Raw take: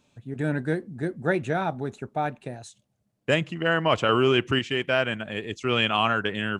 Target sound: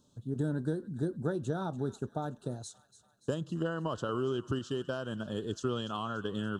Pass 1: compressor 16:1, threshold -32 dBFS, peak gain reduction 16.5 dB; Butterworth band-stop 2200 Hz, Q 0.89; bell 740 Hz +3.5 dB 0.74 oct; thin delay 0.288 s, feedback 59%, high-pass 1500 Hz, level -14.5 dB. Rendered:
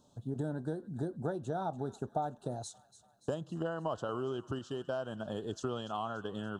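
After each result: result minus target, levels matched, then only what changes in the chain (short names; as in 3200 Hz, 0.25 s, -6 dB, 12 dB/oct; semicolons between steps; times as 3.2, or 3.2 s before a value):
compressor: peak gain reduction +5.5 dB; 1000 Hz band +4.0 dB
change: compressor 16:1, threshold -26 dBFS, peak gain reduction 11 dB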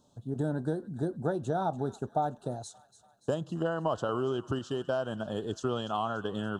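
1000 Hz band +4.5 dB
change: bell 740 Hz -8 dB 0.74 oct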